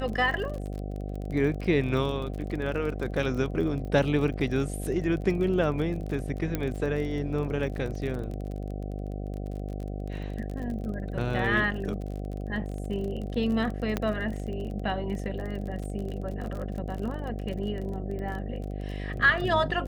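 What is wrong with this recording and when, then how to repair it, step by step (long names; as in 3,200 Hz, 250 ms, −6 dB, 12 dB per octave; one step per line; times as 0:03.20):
mains buzz 50 Hz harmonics 15 −34 dBFS
surface crackle 34 per second −34 dBFS
0:06.55: click −14 dBFS
0:13.97: click −13 dBFS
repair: click removal
hum removal 50 Hz, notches 15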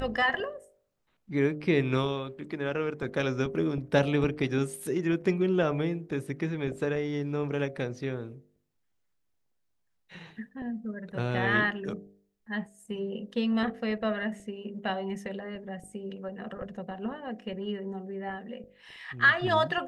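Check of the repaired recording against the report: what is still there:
0:06.55: click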